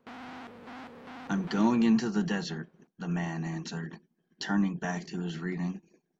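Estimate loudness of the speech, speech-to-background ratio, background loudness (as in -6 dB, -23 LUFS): -31.0 LUFS, 15.0 dB, -46.0 LUFS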